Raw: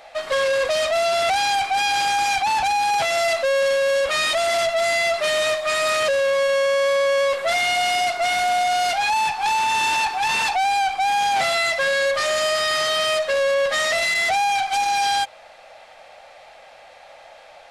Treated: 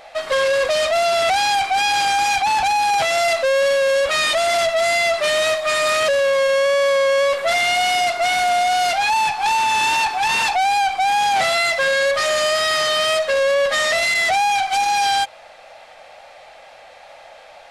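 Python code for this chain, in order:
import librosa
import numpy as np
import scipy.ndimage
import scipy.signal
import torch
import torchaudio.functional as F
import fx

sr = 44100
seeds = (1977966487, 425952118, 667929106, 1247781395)

y = fx.wow_flutter(x, sr, seeds[0], rate_hz=2.1, depth_cents=23.0)
y = y * 10.0 ** (2.5 / 20.0)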